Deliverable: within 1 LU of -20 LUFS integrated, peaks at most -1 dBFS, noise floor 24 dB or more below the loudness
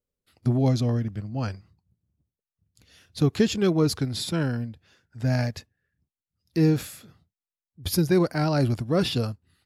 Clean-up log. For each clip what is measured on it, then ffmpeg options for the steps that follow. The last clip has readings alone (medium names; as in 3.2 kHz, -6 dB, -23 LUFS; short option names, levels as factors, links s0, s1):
loudness -25.0 LUFS; peak level -9.5 dBFS; loudness target -20.0 LUFS
-> -af "volume=1.78"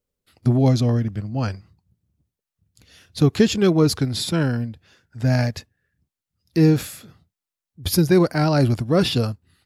loudness -20.0 LUFS; peak level -4.5 dBFS; noise floor -89 dBFS